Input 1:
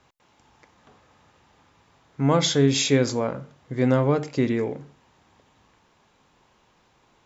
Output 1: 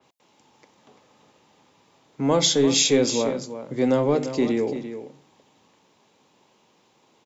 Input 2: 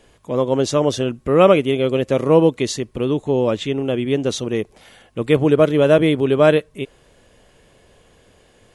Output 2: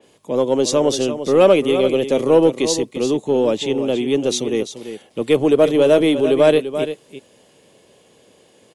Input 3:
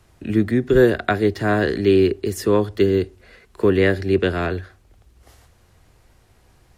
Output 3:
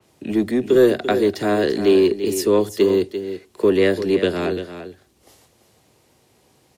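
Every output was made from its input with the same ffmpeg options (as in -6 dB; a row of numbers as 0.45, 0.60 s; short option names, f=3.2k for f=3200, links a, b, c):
-filter_complex "[0:a]highpass=190,bandreject=f=700:w=19,acrossover=split=240[a][b];[a]asoftclip=type=hard:threshold=-30.5dB[c];[c][b]amix=inputs=2:normalize=0,equalizer=f=1.5k:w=1.3:g=-8.5,aecho=1:1:342:0.282,asplit=2[d][e];[e]asoftclip=type=tanh:threshold=-11.5dB,volume=-4.5dB[f];[d][f]amix=inputs=2:normalize=0,adynamicequalizer=threshold=0.02:dfrequency=3900:dqfactor=0.7:tfrequency=3900:tqfactor=0.7:attack=5:release=100:ratio=0.375:range=1.5:mode=boostabove:tftype=highshelf,volume=-1dB"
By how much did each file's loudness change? +1.0, +0.5, +0.5 LU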